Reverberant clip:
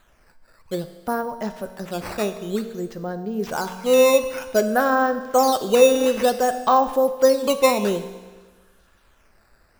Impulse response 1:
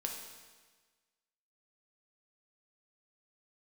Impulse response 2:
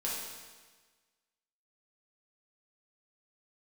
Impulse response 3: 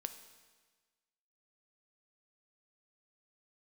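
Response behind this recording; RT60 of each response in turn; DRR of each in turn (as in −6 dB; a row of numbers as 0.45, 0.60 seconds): 3; 1.4, 1.4, 1.4 seconds; 1.0, −6.0, 8.5 decibels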